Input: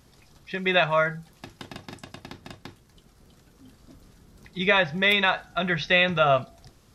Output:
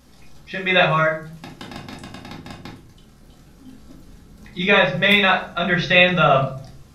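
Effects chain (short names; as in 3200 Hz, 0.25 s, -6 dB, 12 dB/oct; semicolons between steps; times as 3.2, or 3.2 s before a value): shoebox room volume 360 m³, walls furnished, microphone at 2.2 m; gain +2 dB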